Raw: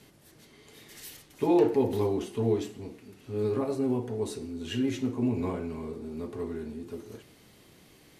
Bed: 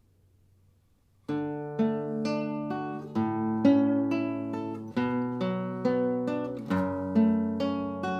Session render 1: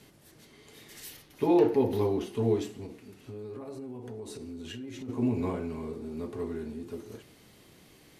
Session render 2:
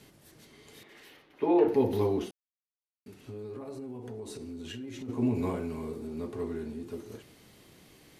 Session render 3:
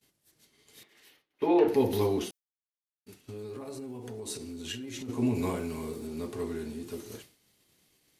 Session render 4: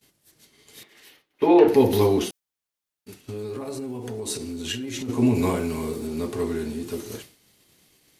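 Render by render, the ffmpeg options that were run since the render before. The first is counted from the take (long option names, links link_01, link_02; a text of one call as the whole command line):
ffmpeg -i in.wav -filter_complex "[0:a]asettb=1/sr,asplit=3[link_01][link_02][link_03];[link_01]atrim=end=1.124[link_04];[link_02]atrim=start=1.12:end=2.35,asetpts=PTS-STARTPTS,afade=type=in:duration=0.004:curve=qsin,afade=type=out:start_time=1.226:duration=0.004:curve=qsin,equalizer=frequency=7800:width_type=o:width=0.46:gain=-8[link_05];[link_03]atrim=start=2.346[link_06];[link_04][link_05]acrossfade=duration=0.004:curve1=hsin:curve2=qsin[link_07];[link_07][link_06]acrossfade=duration=0.004:curve1=qsin:curve2=hsin,asplit=3[link_08][link_09][link_10];[link_08]afade=type=out:start_time=2.85:duration=0.02[link_11];[link_09]acompressor=threshold=-37dB:ratio=10:attack=3.2:release=140:knee=1:detection=peak,afade=type=in:start_time=2.85:duration=0.02,afade=type=out:start_time=5.08:duration=0.02[link_12];[link_10]afade=type=in:start_time=5.08:duration=0.02[link_13];[link_11][link_12][link_13]amix=inputs=3:normalize=0" out.wav
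ffmpeg -i in.wav -filter_complex "[0:a]asettb=1/sr,asplit=3[link_01][link_02][link_03];[link_01]atrim=end=0.834[link_04];[link_02]atrim=start=0.83:end=1.68,asetpts=PTS-STARTPTS,afade=type=in:duration=0.004:curve=qsin,afade=type=out:start_time=0.846:duration=0.004:curve=qsin,acrossover=split=240 3200:gain=0.2 1 0.112[link_05][link_06][link_07];[link_05][link_06][link_07]amix=inputs=3:normalize=0[link_08];[link_03]atrim=start=1.676[link_09];[link_04][link_08]acrossfade=duration=0.004:curve1=hsin:curve2=qsin[link_10];[link_10][link_09]acrossfade=duration=0.004:curve1=qsin:curve2=hsin,asettb=1/sr,asplit=3[link_11][link_12][link_13];[link_11]atrim=end=5.354[link_14];[link_12]atrim=start=5.35:end=6.07,asetpts=PTS-STARTPTS,afade=type=in:duration=0.004:curve=qsin,afade=type=out:start_time=0.716:duration=0.004:curve=qsin,highshelf=frequency=8900:gain=9.5[link_15];[link_13]atrim=start=6.066[link_16];[link_14][link_15]acrossfade=duration=0.004:curve1=hsin:curve2=qsin[link_17];[link_17][link_16]acrossfade=duration=0.004:curve1=qsin:curve2=hsin,asplit=3[link_18][link_19][link_20];[link_18]atrim=end=2.31,asetpts=PTS-STARTPTS,afade=type=out:start_time=2.306:duration=0.004:curve=hsin[link_21];[link_19]atrim=start=2.31:end=3.06,asetpts=PTS-STARTPTS,volume=0[link_22];[link_20]atrim=start=3.06,asetpts=PTS-STARTPTS,afade=type=in:duration=0.004:curve=hsin[link_23];[link_21][link_22][link_23]concat=n=3:v=0:a=1" out.wav
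ffmpeg -i in.wav -af "agate=range=-33dB:threshold=-45dB:ratio=3:detection=peak,highshelf=frequency=2700:gain=11" out.wav
ffmpeg -i in.wav -af "volume=8dB" out.wav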